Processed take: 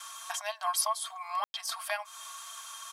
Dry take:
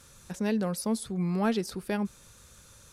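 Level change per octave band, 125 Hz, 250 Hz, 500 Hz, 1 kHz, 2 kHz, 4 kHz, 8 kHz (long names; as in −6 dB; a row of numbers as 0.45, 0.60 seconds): below −40 dB, below −40 dB, −8.5 dB, +5.5 dB, +1.5 dB, +6.5 dB, +7.0 dB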